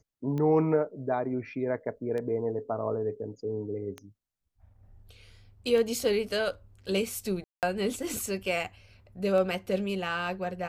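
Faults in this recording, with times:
tick 33 1/3 rpm -23 dBFS
7.44–7.63 s: dropout 188 ms

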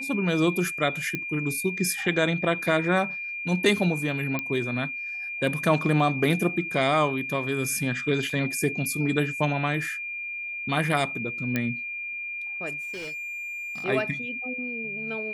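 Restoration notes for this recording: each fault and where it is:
whine 2.4 kHz -31 dBFS
1.15 s: pop -15 dBFS
4.39 s: pop -14 dBFS
8.30 s: dropout 3.7 ms
11.56 s: pop -12 dBFS
12.80–13.85 s: clipped -32.5 dBFS

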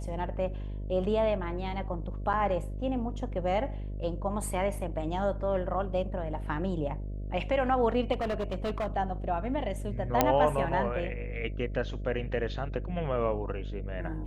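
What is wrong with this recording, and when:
buzz 50 Hz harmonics 13 -36 dBFS
2.33–2.34 s: dropout 8.7 ms
8.12–8.88 s: clipped -27.5 dBFS
10.21 s: pop -7 dBFS

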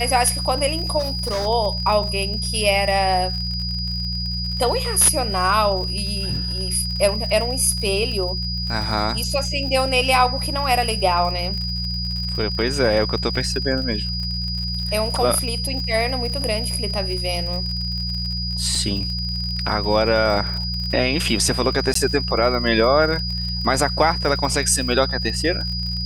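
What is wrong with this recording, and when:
crackle 58 per s -28 dBFS
hum 60 Hz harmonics 3 -27 dBFS
whine 4.9 kHz -26 dBFS
0.99–1.47 s: clipped -19.5 dBFS
18.75 s: dropout 2.7 ms
21.94–21.95 s: dropout 14 ms

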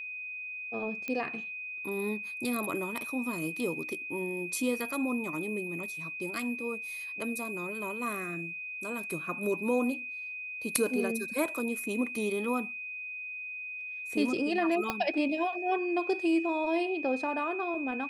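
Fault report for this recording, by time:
whine 2.5 kHz -37 dBFS
1.08 s: pop -21 dBFS
14.90 s: pop -15 dBFS

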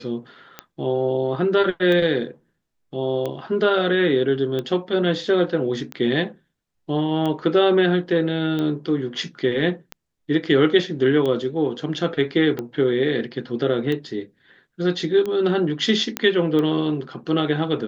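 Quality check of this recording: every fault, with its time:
tick 45 rpm -15 dBFS
16.17 s: pop -6 dBFS

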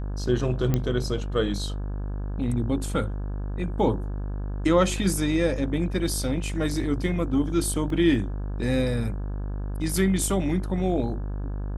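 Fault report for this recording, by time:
buzz 50 Hz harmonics 34 -30 dBFS
0.74 s: pop -11 dBFS
7.90 s: dropout 2.3 ms

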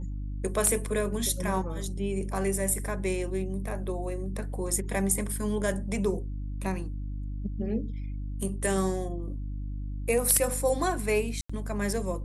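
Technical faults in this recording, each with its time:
hum 50 Hz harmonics 6 -34 dBFS
11.41–11.49 s: dropout 85 ms

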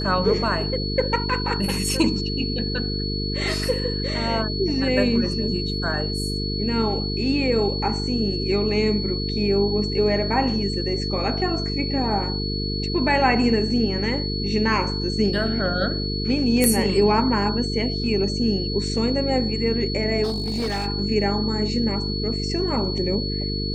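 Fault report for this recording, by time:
buzz 50 Hz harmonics 9 -27 dBFS
whine 4.4 kHz -29 dBFS
16.64 s: pop -4 dBFS
20.23–20.87 s: clipped -21 dBFS

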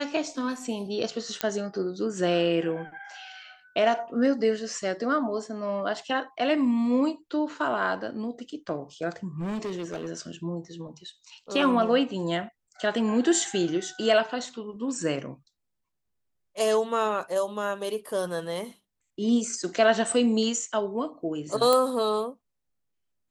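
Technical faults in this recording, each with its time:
1.41 s: pop -9 dBFS
9.39–10.08 s: clipped -28 dBFS
21.73 s: pop -8 dBFS

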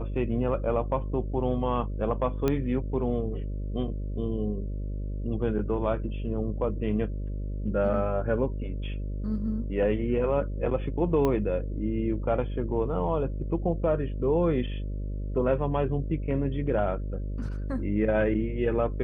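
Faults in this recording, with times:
buzz 50 Hz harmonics 12 -32 dBFS
2.48 s: pop -13 dBFS
11.25 s: pop -15 dBFS

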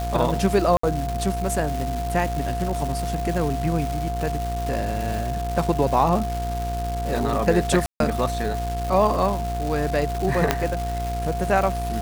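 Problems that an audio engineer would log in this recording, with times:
buzz 60 Hz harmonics 29 -28 dBFS
crackle 560 per s -27 dBFS
whine 700 Hz -28 dBFS
0.77–0.83 s: dropout 64 ms
7.86–8.00 s: dropout 142 ms
10.51 s: pop -2 dBFS

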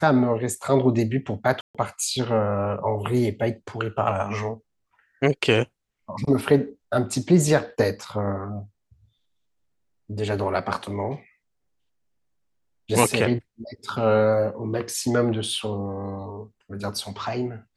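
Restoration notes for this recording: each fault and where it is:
1.61–1.75 s: dropout 136 ms

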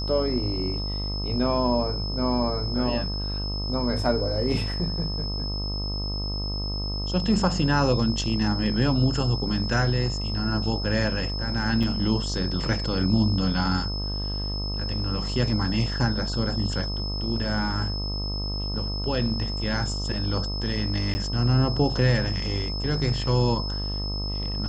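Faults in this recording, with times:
buzz 50 Hz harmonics 26 -30 dBFS
whine 5.2 kHz -32 dBFS
11.83 s: dropout 4.7 ms
21.14–21.15 s: dropout 10 ms

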